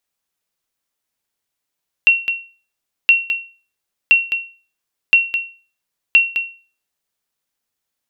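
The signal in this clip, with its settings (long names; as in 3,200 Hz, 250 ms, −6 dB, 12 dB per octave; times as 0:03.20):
ping with an echo 2,730 Hz, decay 0.37 s, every 1.02 s, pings 5, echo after 0.21 s, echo −9 dB −3 dBFS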